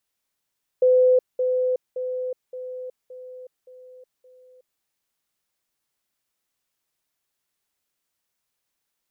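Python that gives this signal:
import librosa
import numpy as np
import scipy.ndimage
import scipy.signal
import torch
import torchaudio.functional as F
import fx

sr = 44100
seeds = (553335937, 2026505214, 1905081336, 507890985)

y = fx.level_ladder(sr, hz=507.0, from_db=-13.0, step_db=-6.0, steps=7, dwell_s=0.37, gap_s=0.2)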